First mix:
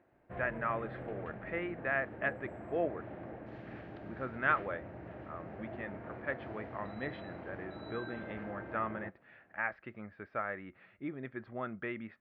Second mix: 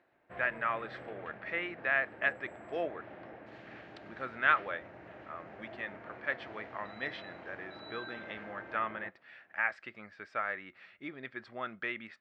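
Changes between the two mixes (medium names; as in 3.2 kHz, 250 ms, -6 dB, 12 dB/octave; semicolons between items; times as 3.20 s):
speech: remove distance through air 280 m; master: add tilt EQ +3 dB/octave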